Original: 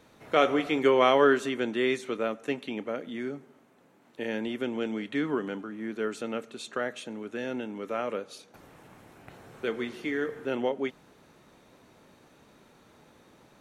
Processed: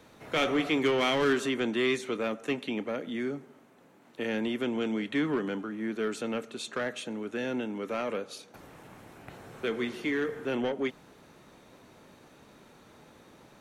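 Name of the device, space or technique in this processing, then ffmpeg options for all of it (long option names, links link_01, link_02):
one-band saturation: -filter_complex "[0:a]acrossover=split=280|2000[link_01][link_02][link_03];[link_02]asoftclip=type=tanh:threshold=-31dB[link_04];[link_01][link_04][link_03]amix=inputs=3:normalize=0,volume=2.5dB"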